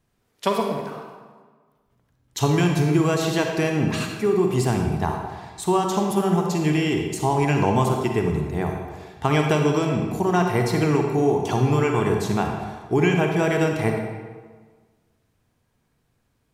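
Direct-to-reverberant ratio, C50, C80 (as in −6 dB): 2.0 dB, 2.5 dB, 4.5 dB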